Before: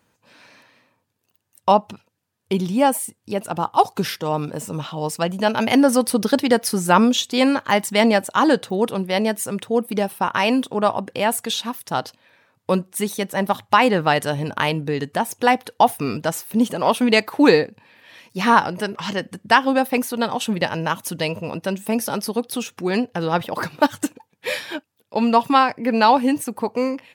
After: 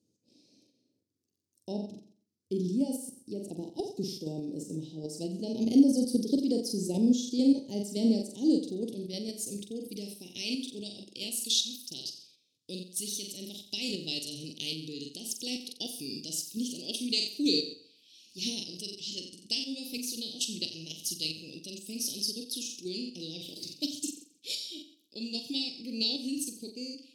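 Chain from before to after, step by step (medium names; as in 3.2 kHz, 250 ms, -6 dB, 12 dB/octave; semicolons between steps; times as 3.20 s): band-pass sweep 1.1 kHz -> 2.8 kHz, 7.97–10.76 s; flutter echo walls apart 7.6 m, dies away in 0.5 s; in parallel at +3 dB: level held to a coarse grid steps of 15 dB; on the sum: elliptic band-stop 330–5000 Hz, stop band 80 dB; trim +7.5 dB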